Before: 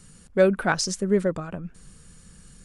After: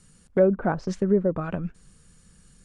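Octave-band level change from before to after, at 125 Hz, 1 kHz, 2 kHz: +2.0, −2.5, −9.0 decibels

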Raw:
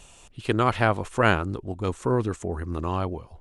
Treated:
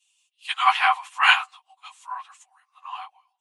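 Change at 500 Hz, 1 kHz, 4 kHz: −24.0, +4.5, +11.5 decibels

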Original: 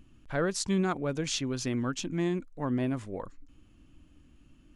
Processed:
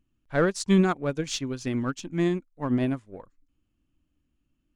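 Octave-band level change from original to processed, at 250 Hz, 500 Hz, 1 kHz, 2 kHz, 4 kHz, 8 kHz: +5.0, +5.0, +4.0, +4.5, +0.5, −1.0 decibels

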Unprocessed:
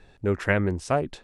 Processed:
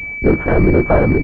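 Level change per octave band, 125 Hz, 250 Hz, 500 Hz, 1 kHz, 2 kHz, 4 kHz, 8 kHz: +11.5 dB, +13.5 dB, +11.5 dB, +8.0 dB, +8.0 dB, can't be measured, below −15 dB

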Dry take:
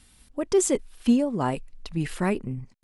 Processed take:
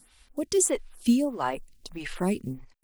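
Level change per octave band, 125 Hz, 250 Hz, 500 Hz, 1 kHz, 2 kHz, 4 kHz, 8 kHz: −6.0, −2.0, −3.0, −1.0, −2.0, +1.0, +2.0 decibels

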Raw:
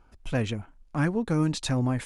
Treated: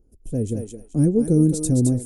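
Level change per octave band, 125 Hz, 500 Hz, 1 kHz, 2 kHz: +7.0 dB, +7.0 dB, below −10 dB, below −20 dB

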